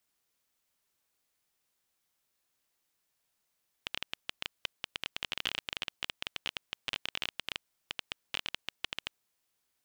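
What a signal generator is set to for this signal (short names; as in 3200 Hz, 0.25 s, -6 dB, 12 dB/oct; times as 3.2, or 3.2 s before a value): random clicks 15/s -15.5 dBFS 5.31 s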